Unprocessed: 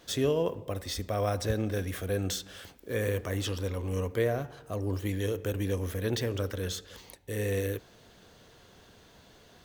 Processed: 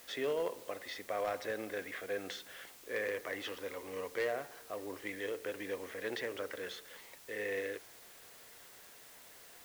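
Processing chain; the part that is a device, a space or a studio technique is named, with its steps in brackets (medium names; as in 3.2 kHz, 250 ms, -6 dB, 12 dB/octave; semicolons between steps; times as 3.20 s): drive-through speaker (band-pass 450–3100 Hz; peaking EQ 2 kHz +8 dB 0.4 oct; hard clipper -25 dBFS, distortion -20 dB; white noise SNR 16 dB); trim -3.5 dB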